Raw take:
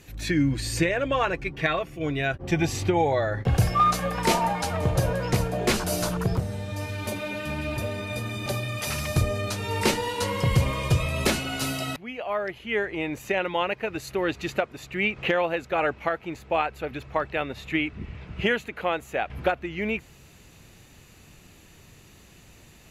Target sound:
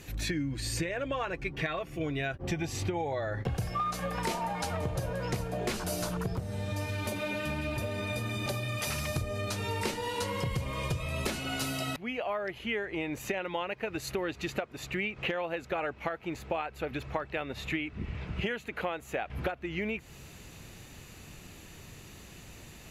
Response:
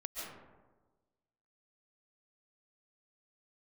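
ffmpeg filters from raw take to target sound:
-af "acompressor=threshold=-33dB:ratio=6,volume=2.5dB"

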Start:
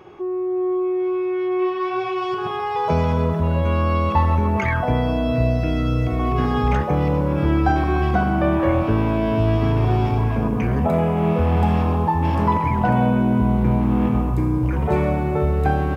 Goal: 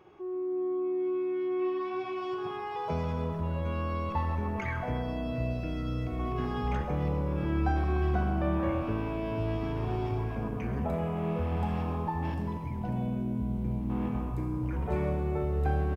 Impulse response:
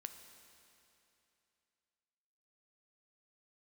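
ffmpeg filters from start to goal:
-filter_complex "[0:a]asettb=1/sr,asplit=3[link_01][link_02][link_03];[link_01]atrim=end=12.344[link_04];[link_02]atrim=start=12.34:end=13.9,asetpts=PTS-STARTPTS,afade=type=in:duration=0.004:curve=qsin,afade=type=out:start_time=1.556:duration=0.004:curve=qsin,equalizer=frequency=1300:width=0.58:gain=-12.5[link_05];[link_03]atrim=start=13.896[link_06];[link_04][link_05]acrossfade=duration=0.004:curve1=hsin:curve2=qsin[link_07];[link_07][link_06]acrossfade=duration=0.004:curve1=qsin:curve2=hsin,asplit=4[link_08][link_09][link_10][link_11];[link_09]adelay=132,afreqshift=-76,volume=-19dB[link_12];[link_10]adelay=264,afreqshift=-152,volume=-28.4dB[link_13];[link_11]adelay=396,afreqshift=-228,volume=-37.7dB[link_14];[link_08][link_12][link_13][link_14]amix=inputs=4:normalize=0[link_15];[1:a]atrim=start_sample=2205,afade=type=out:start_time=0.32:duration=0.01,atrim=end_sample=14553[link_16];[link_15][link_16]afir=irnorm=-1:irlink=0,volume=-7.5dB"

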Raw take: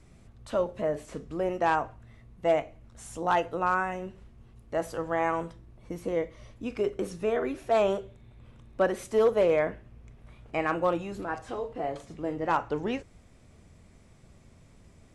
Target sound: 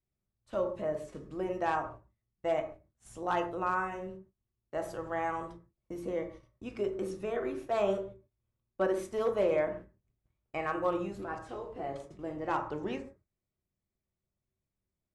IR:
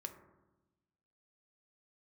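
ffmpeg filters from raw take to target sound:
-filter_complex "[0:a]agate=range=-28dB:threshold=-44dB:ratio=16:detection=peak[link_01];[1:a]atrim=start_sample=2205,atrim=end_sample=6615[link_02];[link_01][link_02]afir=irnorm=-1:irlink=0,volume=-2dB"

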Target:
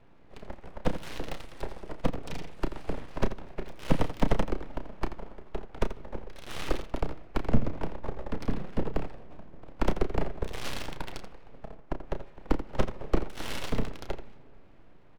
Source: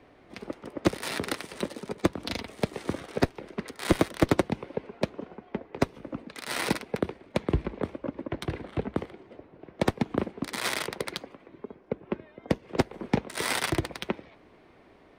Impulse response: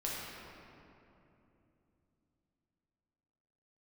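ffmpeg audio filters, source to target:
-filter_complex "[0:a]bass=frequency=250:gain=12,treble=frequency=4000:gain=-9,dynaudnorm=framelen=620:gausssize=9:maxgain=11.5dB,aeval=exprs='abs(val(0))':channel_layout=same,aecho=1:1:32.07|84.55:0.355|0.251,asplit=2[link_01][link_02];[1:a]atrim=start_sample=2205[link_03];[link_02][link_03]afir=irnorm=-1:irlink=0,volume=-23dB[link_04];[link_01][link_04]amix=inputs=2:normalize=0,volume=-7dB"

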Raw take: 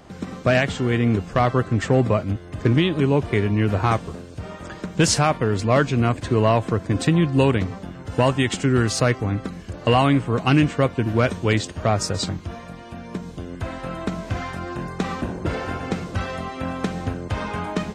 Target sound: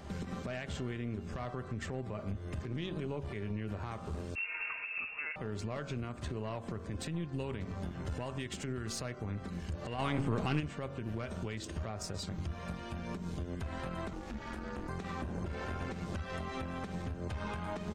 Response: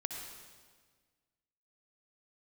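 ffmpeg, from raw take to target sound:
-filter_complex "[0:a]equalizer=frequency=76:width_type=o:width=0.59:gain=13,aecho=1:1:5.1:0.31,bandreject=frequency=46.22:width_type=h:width=4,bandreject=frequency=92.44:width_type=h:width=4,bandreject=frequency=138.66:width_type=h:width=4,bandreject=frequency=184.88:width_type=h:width=4,bandreject=frequency=231.1:width_type=h:width=4,bandreject=frequency=277.32:width_type=h:width=4,bandreject=frequency=323.54:width_type=h:width=4,bandreject=frequency=369.76:width_type=h:width=4,bandreject=frequency=415.98:width_type=h:width=4,bandreject=frequency=462.2:width_type=h:width=4,bandreject=frequency=508.42:width_type=h:width=4,bandreject=frequency=554.64:width_type=h:width=4,bandreject=frequency=600.86:width_type=h:width=4,bandreject=frequency=647.08:width_type=h:width=4,bandreject=frequency=693.3:width_type=h:width=4,bandreject=frequency=739.52:width_type=h:width=4,bandreject=frequency=785.74:width_type=h:width=4,bandreject=frequency=831.96:width_type=h:width=4,bandreject=frequency=878.18:width_type=h:width=4,bandreject=frequency=924.4:width_type=h:width=4,bandreject=frequency=970.62:width_type=h:width=4,bandreject=frequency=1016.84:width_type=h:width=4,bandreject=frequency=1063.06:width_type=h:width=4,bandreject=frequency=1109.28:width_type=h:width=4,bandreject=frequency=1155.5:width_type=h:width=4,bandreject=frequency=1201.72:width_type=h:width=4,bandreject=frequency=1247.94:width_type=h:width=4,bandreject=frequency=1294.16:width_type=h:width=4,bandreject=frequency=1340.38:width_type=h:width=4,bandreject=frequency=1386.6:width_type=h:width=4,bandreject=frequency=1432.82:width_type=h:width=4,bandreject=frequency=1479.04:width_type=h:width=4,bandreject=frequency=1525.26:width_type=h:width=4,acompressor=threshold=-27dB:ratio=6,alimiter=level_in=3dB:limit=-24dB:level=0:latency=1:release=171,volume=-3dB,asplit=3[link_01][link_02][link_03];[link_01]afade=type=out:start_time=9.98:duration=0.02[link_04];[link_02]acontrast=72,afade=type=in:start_time=9.98:duration=0.02,afade=type=out:start_time=10.59:duration=0.02[link_05];[link_03]afade=type=in:start_time=10.59:duration=0.02[link_06];[link_04][link_05][link_06]amix=inputs=3:normalize=0,aeval=exprs='(tanh(15.8*val(0)+0.6)-tanh(0.6))/15.8':channel_layout=same,asettb=1/sr,asplit=3[link_07][link_08][link_09];[link_07]atrim=end=4.354[link_10];[link_08]atrim=start=4.35:end=5.36,asetpts=PTS-STARTPTS,afade=type=in:duration=0.004:curve=qsin,afade=type=out:start_time=1.006:duration=0.004:curve=qsin,lowpass=frequency=2400:width_type=q:width=0.5098,lowpass=frequency=2400:width_type=q:width=0.6013,lowpass=frequency=2400:width_type=q:width=0.9,lowpass=frequency=2400:width_type=q:width=2.563,afreqshift=-2800[link_11];[link_09]atrim=start=5.356[link_12];[link_10][link_11]acrossfade=duration=0.004:curve1=hsin:curve2=qsin[link_13];[link_13][link_12]acrossfade=duration=0.004:curve1=qsin:curve2=hsin,asettb=1/sr,asplit=3[link_14][link_15][link_16];[link_14]atrim=end=14.134[link_17];[link_15]atrim=start=14.13:end=14.89,asetpts=PTS-STARTPTS,afade=type=in:duration=0.004:curve=qsin,afade=type=out:start_time=0.756:duration=0.004:curve=qsin,aeval=exprs='val(0)*sin(2*PI*140*n/s)':channel_layout=same[link_18];[link_16]atrim=start=14.886[link_19];[link_17][link_18]acrossfade=duration=0.004:curve1=hsin:curve2=qsin[link_20];[link_20][link_19]acrossfade=duration=0.004:curve1=qsin:curve2=hsin"

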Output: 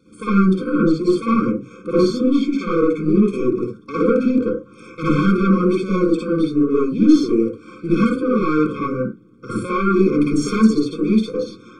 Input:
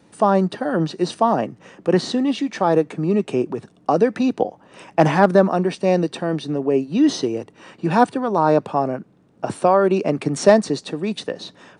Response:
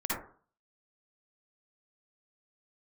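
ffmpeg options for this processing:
-filter_complex "[0:a]aeval=exprs='(tanh(5.62*val(0)+0.1)-tanh(0.1))/5.62':channel_layout=same[link_01];[1:a]atrim=start_sample=2205,afade=type=out:start_time=0.21:duration=0.01,atrim=end_sample=9702[link_02];[link_01][link_02]afir=irnorm=-1:irlink=0,afftfilt=real='re*eq(mod(floor(b*sr/1024/520),2),0)':imag='im*eq(mod(floor(b*sr/1024/520),2),0)':win_size=1024:overlap=0.75,volume=-1dB"

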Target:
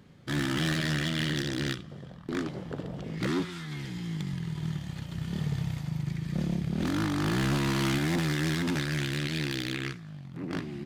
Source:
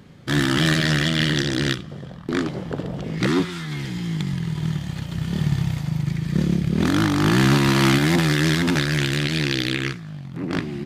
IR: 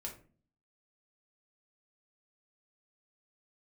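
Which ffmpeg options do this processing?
-af "asoftclip=type=hard:threshold=-15dB,volume=-8.5dB"

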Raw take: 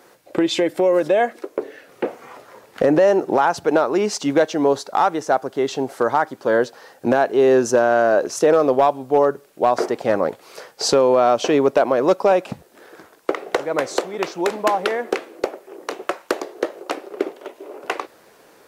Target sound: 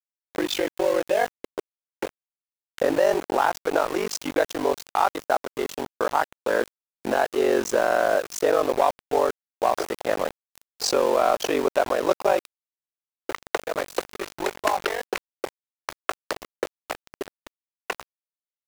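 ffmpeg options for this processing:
ffmpeg -i in.wav -af "highpass=frequency=500:poles=1,aeval=exprs='val(0)*sin(2*PI*24*n/s)':channel_layout=same,aeval=exprs='val(0)*gte(abs(val(0)),0.0376)':channel_layout=same" out.wav

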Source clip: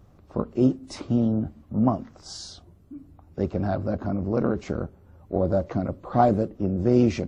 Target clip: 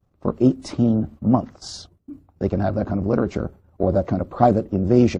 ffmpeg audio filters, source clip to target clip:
ffmpeg -i in.wav -af "agate=range=-33dB:threshold=-42dB:ratio=3:detection=peak,atempo=1.4,volume=4.5dB" out.wav

